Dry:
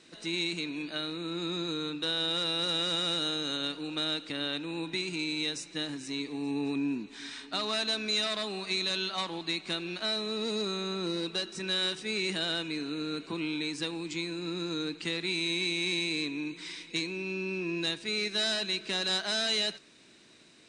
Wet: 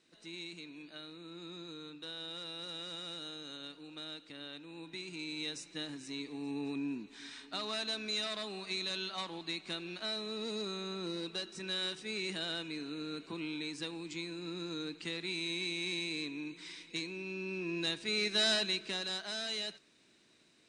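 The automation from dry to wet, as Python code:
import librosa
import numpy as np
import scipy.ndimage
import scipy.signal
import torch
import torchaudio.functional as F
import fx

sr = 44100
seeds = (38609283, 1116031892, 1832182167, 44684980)

y = fx.gain(x, sr, db=fx.line((4.67, -13.5), (5.53, -6.5), (17.33, -6.5), (18.54, 0.5), (19.14, -9.0)))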